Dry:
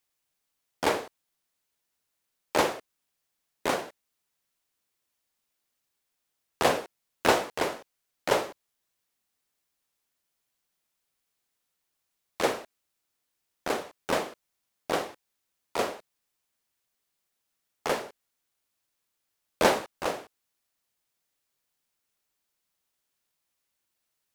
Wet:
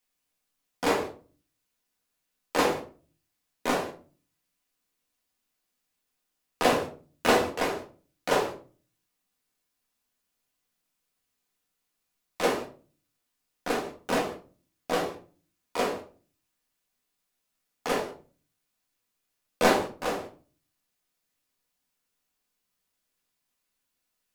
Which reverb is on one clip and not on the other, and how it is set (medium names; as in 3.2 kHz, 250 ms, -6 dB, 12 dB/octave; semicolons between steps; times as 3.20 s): simulated room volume 240 m³, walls furnished, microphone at 1.9 m; trim -2.5 dB